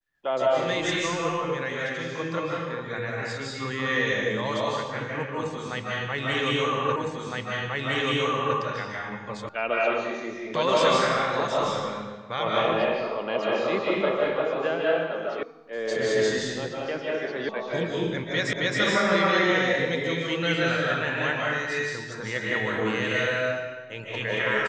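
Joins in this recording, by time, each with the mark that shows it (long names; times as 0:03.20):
0:06.96: the same again, the last 1.61 s
0:09.49: cut off before it has died away
0:15.43: cut off before it has died away
0:17.49: cut off before it has died away
0:18.53: the same again, the last 0.27 s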